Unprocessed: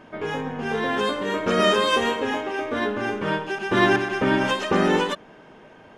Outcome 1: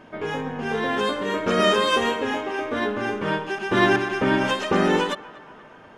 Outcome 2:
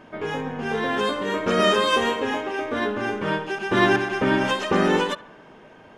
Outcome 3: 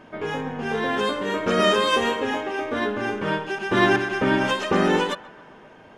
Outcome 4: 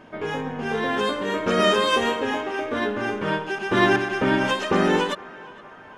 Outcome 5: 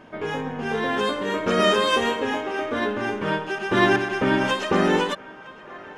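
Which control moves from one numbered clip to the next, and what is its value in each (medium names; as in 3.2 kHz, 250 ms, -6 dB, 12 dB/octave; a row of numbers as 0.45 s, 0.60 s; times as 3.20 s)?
band-passed feedback delay, time: 238 ms, 67 ms, 132 ms, 463 ms, 963 ms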